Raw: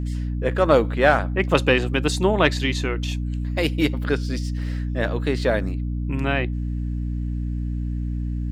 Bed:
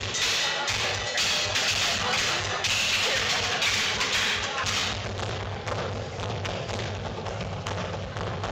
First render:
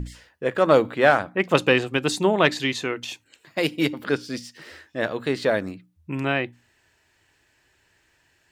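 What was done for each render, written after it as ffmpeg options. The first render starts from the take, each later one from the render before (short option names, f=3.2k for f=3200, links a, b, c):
-af "bandreject=f=60:t=h:w=6,bandreject=f=120:t=h:w=6,bandreject=f=180:t=h:w=6,bandreject=f=240:t=h:w=6,bandreject=f=300:t=h:w=6"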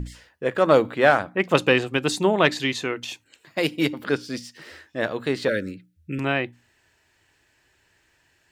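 -filter_complex "[0:a]asettb=1/sr,asplit=3[a][b][c];[a]atrim=end=5.484[d];[b]atrim=start=5.48:end=6.19,asetpts=PTS-STARTPTS,afade=t=in:d=0.004:c=qsin,afade=t=out:st=0.706:d=0.004:c=qsin,asuperstop=centerf=880:order=20:qfactor=1.2[e];[c]atrim=start=6.186[f];[d][e]acrossfade=d=0.004:c1=hsin:c2=qsin[g];[g][f]acrossfade=d=0.004:c1=qsin:c2=hsin"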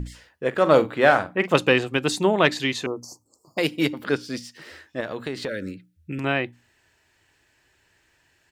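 -filter_complex "[0:a]asplit=3[a][b][c];[a]afade=t=out:st=0.52:d=0.02[d];[b]asplit=2[e][f];[f]adelay=44,volume=-12dB[g];[e][g]amix=inputs=2:normalize=0,afade=t=in:st=0.52:d=0.02,afade=t=out:st=1.56:d=0.02[h];[c]afade=t=in:st=1.56:d=0.02[i];[d][h][i]amix=inputs=3:normalize=0,asettb=1/sr,asplit=3[j][k][l];[j]atrim=end=2.864[m];[k]atrim=start=2.86:end=3.58,asetpts=PTS-STARTPTS,afade=t=in:d=0.004:c=qsin,afade=t=out:st=0.716:d=0.004:c=qsin,asuperstop=centerf=2400:order=20:qfactor=0.7[n];[l]atrim=start=3.576[o];[m][n]acrossfade=d=0.004:c1=hsin:c2=qsin[p];[p][o]acrossfade=d=0.004:c1=qsin:c2=hsin,asettb=1/sr,asplit=3[q][r][s];[q]atrim=end=5.004[t];[r]atrim=start=5:end=6.24,asetpts=PTS-STARTPTS,afade=t=in:d=0.004:c=qsin,afade=t=out:st=1.236:d=0.004:c=qsin,acompressor=threshold=-25dB:ratio=6:attack=3.2:release=140:knee=1:detection=peak[u];[s]atrim=start=6.236[v];[t][u]acrossfade=d=0.004:c1=hsin:c2=qsin[w];[w][v]acrossfade=d=0.004:c1=qsin:c2=hsin"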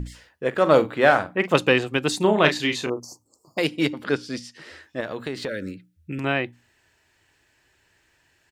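-filter_complex "[0:a]asplit=3[a][b][c];[a]afade=t=out:st=2.2:d=0.02[d];[b]asplit=2[e][f];[f]adelay=33,volume=-6.5dB[g];[e][g]amix=inputs=2:normalize=0,afade=t=in:st=2.2:d=0.02,afade=t=out:st=2.99:d=0.02[h];[c]afade=t=in:st=2.99:d=0.02[i];[d][h][i]amix=inputs=3:normalize=0,asettb=1/sr,asplit=3[j][k][l];[j]atrim=end=3.644[m];[k]atrim=start=3.64:end=4.83,asetpts=PTS-STARTPTS,afade=t=in:d=0.004:c=qsin,afade=t=out:st=1.186:d=0.004:c=qsin,lowpass=9.9k[n];[l]atrim=start=4.826[o];[m][n]acrossfade=d=0.004:c1=hsin:c2=qsin[p];[p][o]acrossfade=d=0.004:c1=qsin:c2=hsin"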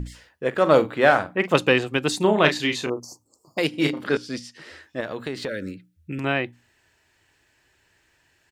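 -filter_complex "[0:a]asettb=1/sr,asplit=3[a][b][c];[a]atrim=end=3.704[d];[b]atrim=start=3.7:end=4.17,asetpts=PTS-STARTPTS,afade=t=in:d=0.004:c=qsin,afade=t=out:st=0.466:d=0.004:c=qsin,asplit=2[e][f];[f]adelay=33,volume=-5dB[g];[e][g]amix=inputs=2:normalize=0,atrim=end_sample=20727[h];[c]atrim=start=4.166[i];[d][h]acrossfade=d=0.004:c1=hsin:c2=qsin[j];[j][i]acrossfade=d=0.004:c1=qsin:c2=hsin"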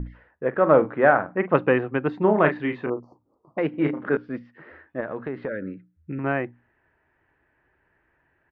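-af "lowpass=f=1.8k:w=0.5412,lowpass=f=1.8k:w=1.3066,equalizer=f=96:t=o:w=0.3:g=-7.5"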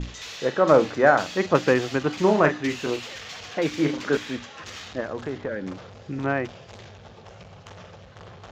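-filter_complex "[1:a]volume=-13dB[a];[0:a][a]amix=inputs=2:normalize=0"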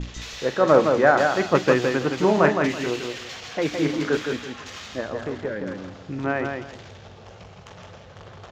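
-af "aecho=1:1:165|330|495:0.562|0.135|0.0324"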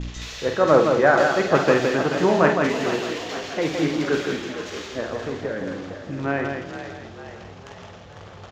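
-filter_complex "[0:a]asplit=2[a][b];[b]adelay=50,volume=-7dB[c];[a][c]amix=inputs=2:normalize=0,asplit=6[d][e][f][g][h][i];[e]adelay=457,afreqshift=43,volume=-11dB[j];[f]adelay=914,afreqshift=86,volume=-17dB[k];[g]adelay=1371,afreqshift=129,volume=-23dB[l];[h]adelay=1828,afreqshift=172,volume=-29.1dB[m];[i]adelay=2285,afreqshift=215,volume=-35.1dB[n];[d][j][k][l][m][n]amix=inputs=6:normalize=0"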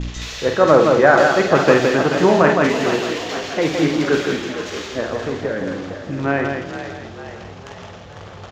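-af "volume=5dB,alimiter=limit=-1dB:level=0:latency=1"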